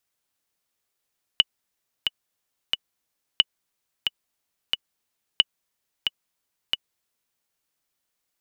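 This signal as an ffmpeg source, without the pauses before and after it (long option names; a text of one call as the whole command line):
ffmpeg -f lavfi -i "aevalsrc='pow(10,(-2-7*gte(mod(t,3*60/90),60/90))/20)*sin(2*PI*2950*mod(t,60/90))*exp(-6.91*mod(t,60/90)/0.03)':duration=6:sample_rate=44100" out.wav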